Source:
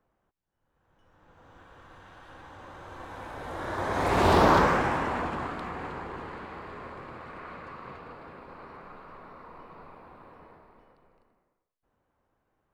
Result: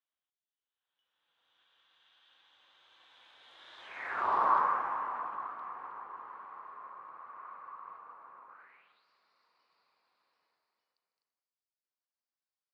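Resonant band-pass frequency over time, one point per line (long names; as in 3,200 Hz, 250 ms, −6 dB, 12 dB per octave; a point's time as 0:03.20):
resonant band-pass, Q 4.8
0:03.80 3,400 Hz
0:04.28 1,100 Hz
0:08.47 1,100 Hz
0:09.05 4,800 Hz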